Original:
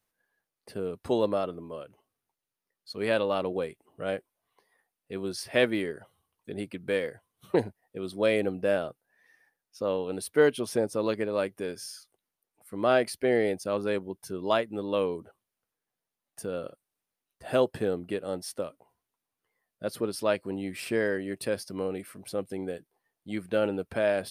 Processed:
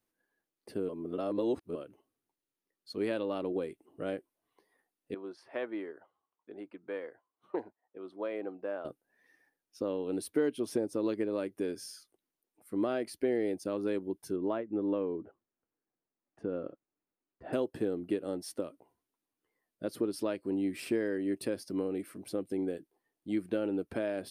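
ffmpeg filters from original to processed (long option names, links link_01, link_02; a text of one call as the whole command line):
ffmpeg -i in.wav -filter_complex "[0:a]asettb=1/sr,asplit=3[link_01][link_02][link_03];[link_01]atrim=end=5.144[link_04];[link_02]atrim=start=5.14:end=8.85,asetpts=PTS-STARTPTS,afade=type=in:duration=0.004:curve=qsin,afade=type=out:start_time=3.706:duration=0.004:curve=qsin,bandpass=frequency=990:width_type=q:width=1.6[link_05];[link_03]atrim=start=8.846[link_06];[link_04][link_05]acrossfade=duration=0.004:curve1=hsin:curve2=qsin[link_07];[link_07][link_06]acrossfade=duration=0.004:curve1=qsin:curve2=hsin,asettb=1/sr,asplit=3[link_08][link_09][link_10];[link_08]atrim=end=14.364[link_11];[link_09]atrim=start=14.36:end=17.53,asetpts=PTS-STARTPTS,afade=type=in:duration=0.004:curve=qsin,afade=type=out:start_time=3.166:duration=0.004:curve=qsin,lowpass=1800[link_12];[link_10]atrim=start=17.526[link_13];[link_11][link_12]acrossfade=duration=0.004:curve1=hsin:curve2=qsin[link_14];[link_14][link_13]acrossfade=duration=0.004:curve1=qsin:curve2=hsin,asplit=3[link_15][link_16][link_17];[link_15]atrim=end=0.892[link_18];[link_16]atrim=start=0.888:end=1.752,asetpts=PTS-STARTPTS,areverse[link_19];[link_17]atrim=start=1.748[link_20];[link_18][link_19]acrossfade=duration=0.004:curve1=hsin:curve2=hsin[link_21];[link_21][link_20]acrossfade=duration=0.004:curve1=hsin:curve2=hsin,acompressor=threshold=-31dB:ratio=2.5,equalizer=frequency=310:width=1.7:gain=12,volume=-5dB" out.wav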